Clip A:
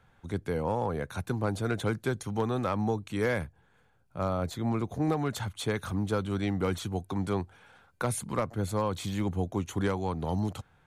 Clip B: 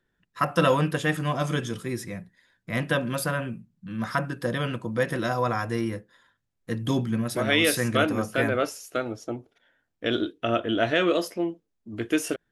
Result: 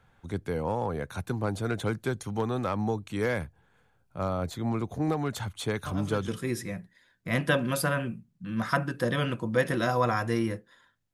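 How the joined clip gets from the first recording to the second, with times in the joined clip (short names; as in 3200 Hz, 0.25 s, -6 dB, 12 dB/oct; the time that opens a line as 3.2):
clip A
5.86 add clip B from 1.28 s 0.42 s -12.5 dB
6.28 switch to clip B from 1.7 s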